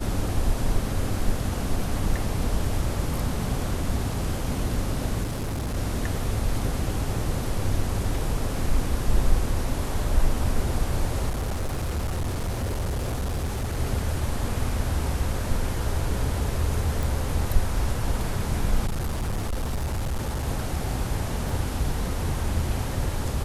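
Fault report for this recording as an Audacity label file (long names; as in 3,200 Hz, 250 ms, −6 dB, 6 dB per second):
5.240000	5.770000	clipping −25 dBFS
11.290000	13.780000	clipping −23.5 dBFS
17.030000	17.030000	click
18.860000	20.460000	clipping −23.5 dBFS
21.490000	21.490000	drop-out 2.2 ms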